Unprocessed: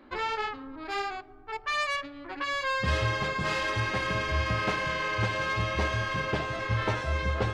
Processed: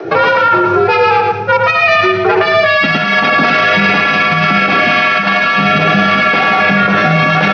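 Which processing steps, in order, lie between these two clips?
high shelf 3900 Hz -6.5 dB; companded quantiser 6-bit; steep low-pass 5900 Hz 96 dB/oct; small resonant body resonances 690/1300/2400 Hz, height 13 dB, ringing for 75 ms; reverb RT60 1.1 s, pre-delay 32 ms, DRR 12.5 dB; rotary speaker horn 5 Hz, later 0.9 Hz, at 1.69; frequency shift +88 Hz; bell 450 Hz +8 dB 2.7 oct, from 2.66 s 2200 Hz; negative-ratio compressor -29 dBFS, ratio -0.5; feedback echo 0.111 s, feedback 26%, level -7 dB; maximiser +24.5 dB; gain -1 dB

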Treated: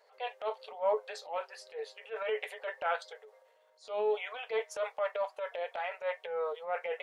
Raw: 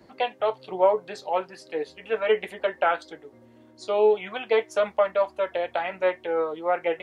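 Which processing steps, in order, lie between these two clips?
brick-wall FIR high-pass 410 Hz; transient shaper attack -9 dB, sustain +5 dB; gain -7.5 dB

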